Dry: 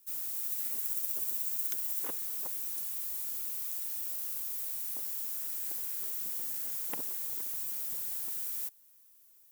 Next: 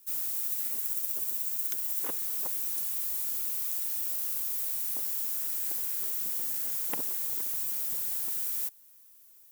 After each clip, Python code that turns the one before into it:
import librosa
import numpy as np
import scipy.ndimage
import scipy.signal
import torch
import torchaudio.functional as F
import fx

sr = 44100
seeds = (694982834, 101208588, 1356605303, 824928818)

y = fx.rider(x, sr, range_db=10, speed_s=0.5)
y = y * 10.0 ** (4.0 / 20.0)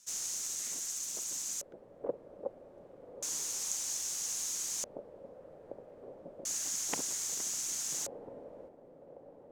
y = fx.echo_diffused(x, sr, ms=1283, feedback_pct=54, wet_db=-7.5)
y = fx.filter_lfo_lowpass(y, sr, shape='square', hz=0.31, low_hz=550.0, high_hz=6500.0, q=5.3)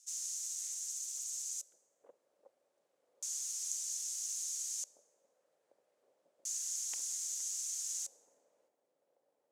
y = fx.bandpass_q(x, sr, hz=7900.0, q=0.91)
y = fx.rev_plate(y, sr, seeds[0], rt60_s=1.6, hf_ratio=0.6, predelay_ms=0, drr_db=20.0)
y = y * 10.0 ** (-2.0 / 20.0)